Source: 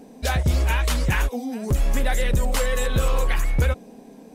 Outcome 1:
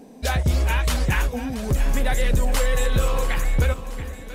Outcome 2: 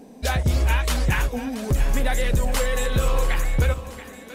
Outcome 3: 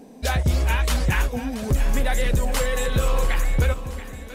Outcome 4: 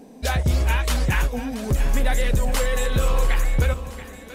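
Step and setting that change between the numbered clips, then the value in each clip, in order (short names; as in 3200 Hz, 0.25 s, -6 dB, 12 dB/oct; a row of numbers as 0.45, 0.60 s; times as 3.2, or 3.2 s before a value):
split-band echo, lows: 410, 94, 271, 142 ms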